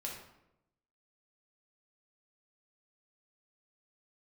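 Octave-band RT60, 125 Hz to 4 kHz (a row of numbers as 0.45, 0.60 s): 1.1, 1.0, 0.90, 0.80, 0.70, 0.55 s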